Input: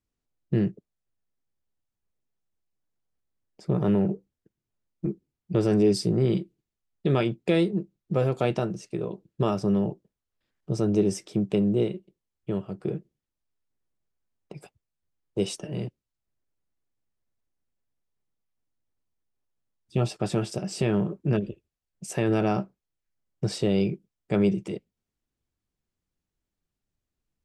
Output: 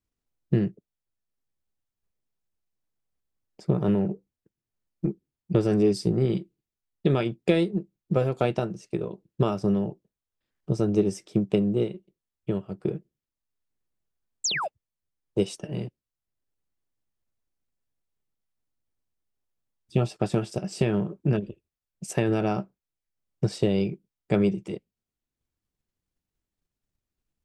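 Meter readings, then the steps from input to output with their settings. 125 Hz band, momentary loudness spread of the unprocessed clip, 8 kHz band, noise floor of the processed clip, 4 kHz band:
+0.5 dB, 12 LU, +3.0 dB, below −85 dBFS, +1.5 dB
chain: sound drawn into the spectrogram fall, 0:14.44–0:14.68, 530–8,000 Hz −27 dBFS
transient designer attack +5 dB, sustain −3 dB
level −1.5 dB

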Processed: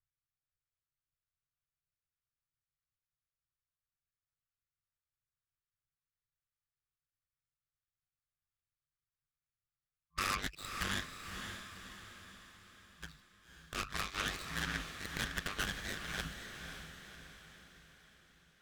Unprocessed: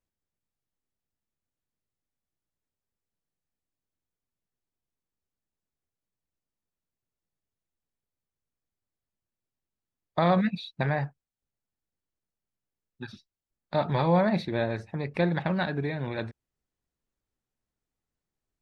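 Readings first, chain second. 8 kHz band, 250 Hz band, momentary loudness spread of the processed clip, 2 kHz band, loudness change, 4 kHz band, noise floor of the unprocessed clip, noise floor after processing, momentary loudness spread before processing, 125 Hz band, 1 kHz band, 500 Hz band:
can't be measured, −19.0 dB, 19 LU, −2.5 dB, −11.5 dB, +1.5 dB, below −85 dBFS, below −85 dBFS, 16 LU, −17.5 dB, −11.5 dB, −22.0 dB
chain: running median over 15 samples
brick-wall band-stop 110–1,100 Hz
harmonic generator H 8 −9 dB, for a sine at −23 dBFS
ring modulation 49 Hz
feedback delay with all-pass diffusion 543 ms, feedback 50%, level −6.5 dB

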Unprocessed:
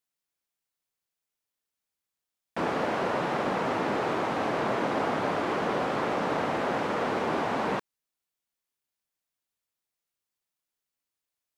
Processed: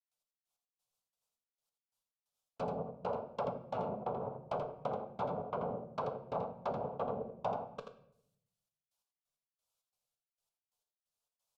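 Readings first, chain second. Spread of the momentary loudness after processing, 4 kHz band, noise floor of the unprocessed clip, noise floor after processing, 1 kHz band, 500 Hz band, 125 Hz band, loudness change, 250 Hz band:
3 LU, −20.5 dB, below −85 dBFS, below −85 dBFS, −11.0 dB, −9.0 dB, −7.5 dB, −11.0 dB, −14.5 dB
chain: gate pattern ".x..x..xx.xx." 133 BPM −60 dB
rotating-speaker cabinet horn 7 Hz, later 1.2 Hz, at 0:06.57
treble cut that deepens with the level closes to 420 Hz, closed at −27.5 dBFS
phaser with its sweep stopped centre 770 Hz, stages 4
flanger 0.87 Hz, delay 6.9 ms, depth 4.1 ms, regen −78%
high-shelf EQ 6,100 Hz −5.5 dB
rectangular room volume 150 cubic metres, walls mixed, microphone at 0.33 metres
in parallel at +2.5 dB: downward compressor, threshold −51 dBFS, peak gain reduction 14.5 dB
on the sum: low-shelf EQ 160 Hz −6 dB
single-tap delay 83 ms −7 dB
level +3 dB

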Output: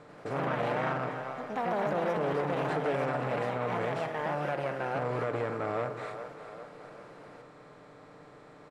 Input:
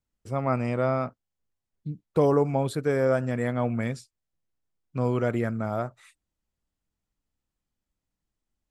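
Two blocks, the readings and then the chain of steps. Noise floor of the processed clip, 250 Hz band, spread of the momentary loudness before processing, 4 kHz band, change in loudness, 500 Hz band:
−53 dBFS, −7.5 dB, 14 LU, +2.0 dB, −5.5 dB, −4.0 dB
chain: compressor on every frequency bin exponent 0.4
low-pass filter 5,900 Hz 12 dB per octave
high-shelf EQ 2,000 Hz −10 dB
comb filter 6.7 ms, depth 46%
echo with a time of its own for lows and highs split 420 Hz, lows 145 ms, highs 396 ms, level −12 dB
delay with pitch and tempo change per echo 91 ms, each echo +3 semitones, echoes 3
low-shelf EQ 470 Hz −10 dB
brickwall limiter −17.5 dBFS, peak gain reduction 10 dB
saturating transformer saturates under 580 Hz
level −2 dB

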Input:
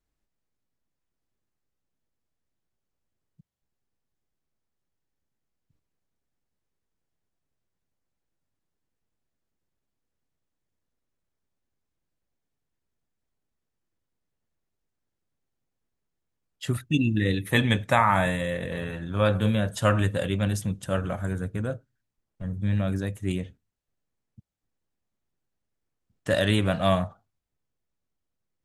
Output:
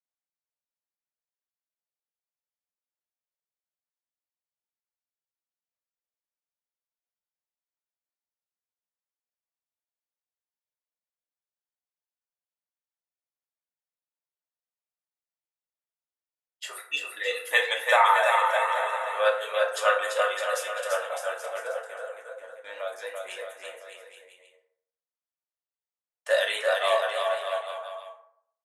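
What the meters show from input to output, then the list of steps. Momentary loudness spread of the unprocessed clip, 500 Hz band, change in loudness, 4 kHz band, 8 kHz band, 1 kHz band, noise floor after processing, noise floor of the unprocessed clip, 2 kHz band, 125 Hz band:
11 LU, +2.5 dB, 0.0 dB, +2.0 dB, +2.5 dB, +4.0 dB, below −85 dBFS, −82 dBFS, +4.5 dB, below −40 dB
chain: elliptic high-pass filter 530 Hz, stop band 50 dB
reverb reduction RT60 1 s
noise gate −56 dBFS, range −15 dB
on a send: bouncing-ball delay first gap 340 ms, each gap 0.8×, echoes 5
on the sum: feedback delay network reverb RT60 0.65 s, low-frequency decay 0.75×, high-frequency decay 0.5×, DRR −0.5 dB

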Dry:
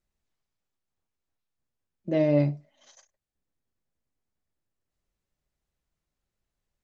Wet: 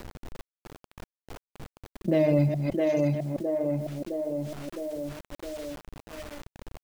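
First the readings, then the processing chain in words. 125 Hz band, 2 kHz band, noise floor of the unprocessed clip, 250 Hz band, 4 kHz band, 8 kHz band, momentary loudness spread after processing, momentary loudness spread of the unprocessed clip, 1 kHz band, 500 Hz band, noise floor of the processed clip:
+4.0 dB, +5.0 dB, below −85 dBFS, +3.5 dB, +7.5 dB, can't be measured, 22 LU, 19 LU, +6.0 dB, +4.5 dB, below −85 dBFS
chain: delay that plays each chunk backwards 159 ms, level −9 dB
on a send: feedback echo with a high-pass in the loop 662 ms, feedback 35%, high-pass 190 Hz, level −6.5 dB
on the sum: low-pass that shuts in the quiet parts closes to 560 Hz, open at −22.5 dBFS
hum removal 59.45 Hz, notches 3
reverb reduction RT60 1.2 s
log-companded quantiser 8 bits
envelope flattener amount 70%

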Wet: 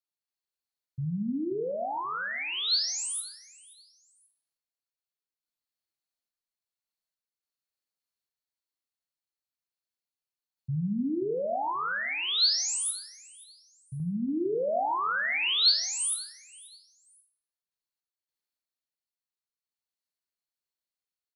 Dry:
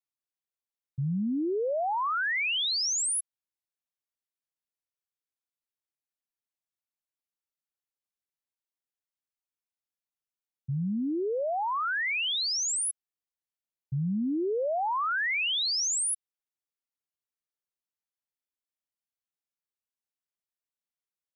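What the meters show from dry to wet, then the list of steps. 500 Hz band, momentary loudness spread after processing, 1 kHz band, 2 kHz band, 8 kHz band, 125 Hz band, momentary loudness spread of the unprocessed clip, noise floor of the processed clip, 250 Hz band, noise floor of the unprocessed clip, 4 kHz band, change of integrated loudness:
−1.0 dB, 15 LU, −1.5 dB, −2.0 dB, −2.5 dB, −1.5 dB, 8 LU, below −85 dBFS, −1.0 dB, below −85 dBFS, +3.0 dB, 0.0 dB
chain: parametric band 4,300 Hz +11 dB 0.2 octaves
double-tracking delay 35 ms −13 dB
sample-and-hold tremolo
on a send: repeating echo 531 ms, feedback 28%, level −21 dB
on the sum: four-comb reverb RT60 0.49 s, combs from 26 ms, DRR 6.5 dB

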